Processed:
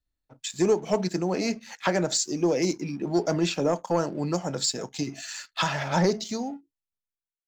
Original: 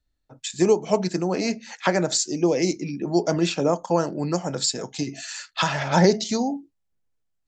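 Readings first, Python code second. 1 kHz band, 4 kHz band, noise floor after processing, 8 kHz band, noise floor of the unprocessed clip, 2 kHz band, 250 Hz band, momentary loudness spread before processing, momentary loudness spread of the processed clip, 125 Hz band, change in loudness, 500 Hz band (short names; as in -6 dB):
-4.0 dB, -3.0 dB, under -85 dBFS, -3.0 dB, -74 dBFS, -3.5 dB, -3.5 dB, 11 LU, 9 LU, -3.5 dB, -3.5 dB, -3.5 dB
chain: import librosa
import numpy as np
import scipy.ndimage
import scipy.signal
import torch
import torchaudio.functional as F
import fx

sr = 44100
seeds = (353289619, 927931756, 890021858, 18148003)

y = fx.fade_out_tail(x, sr, length_s=1.9)
y = fx.leveller(y, sr, passes=1)
y = y * 10.0 ** (-6.0 / 20.0)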